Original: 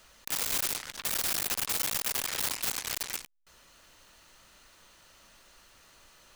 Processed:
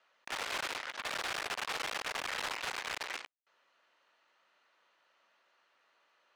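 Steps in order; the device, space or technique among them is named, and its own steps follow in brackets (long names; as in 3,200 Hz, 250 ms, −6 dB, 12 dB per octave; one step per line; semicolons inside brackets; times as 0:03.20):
walkie-talkie (band-pass filter 510–2,600 Hz; hard clipping −38.5 dBFS, distortion −9 dB; noise gate −59 dBFS, range −15 dB)
level +6 dB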